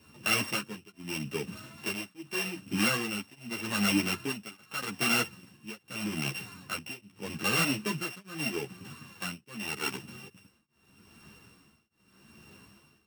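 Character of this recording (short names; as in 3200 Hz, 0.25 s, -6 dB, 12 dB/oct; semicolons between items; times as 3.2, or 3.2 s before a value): a buzz of ramps at a fixed pitch in blocks of 16 samples; tremolo triangle 0.82 Hz, depth 100%; a shimmering, thickened sound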